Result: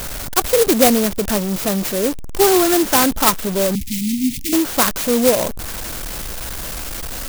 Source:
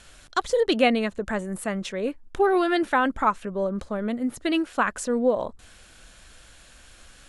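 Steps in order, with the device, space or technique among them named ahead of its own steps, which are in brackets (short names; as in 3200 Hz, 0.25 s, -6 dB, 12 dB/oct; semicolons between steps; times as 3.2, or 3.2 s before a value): early CD player with a faulty converter (zero-crossing step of -27.5 dBFS; clock jitter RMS 0.14 ms); 3.75–4.53 Chebyshev band-stop 280–2100 Hz, order 4; gain +6 dB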